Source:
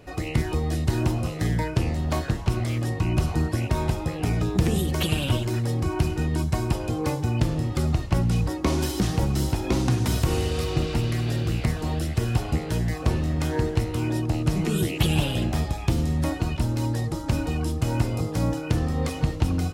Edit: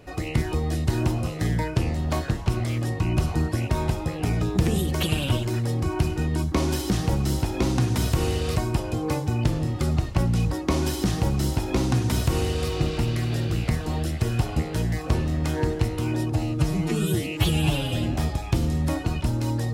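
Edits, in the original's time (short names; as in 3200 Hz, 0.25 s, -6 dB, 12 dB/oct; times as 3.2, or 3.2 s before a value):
8.62–10.66 copy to 6.52
14.28–15.49 stretch 1.5×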